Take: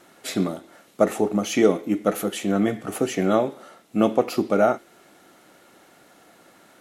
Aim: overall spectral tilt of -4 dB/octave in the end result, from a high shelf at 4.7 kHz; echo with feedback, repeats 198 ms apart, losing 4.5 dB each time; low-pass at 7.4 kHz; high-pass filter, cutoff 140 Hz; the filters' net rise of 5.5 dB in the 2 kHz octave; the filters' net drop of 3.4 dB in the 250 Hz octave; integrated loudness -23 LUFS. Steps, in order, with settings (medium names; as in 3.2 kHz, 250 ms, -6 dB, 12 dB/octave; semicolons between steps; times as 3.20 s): high-pass 140 Hz; low-pass 7.4 kHz; peaking EQ 250 Hz -4 dB; peaking EQ 2 kHz +8.5 dB; treble shelf 4.7 kHz -8 dB; feedback delay 198 ms, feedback 60%, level -4.5 dB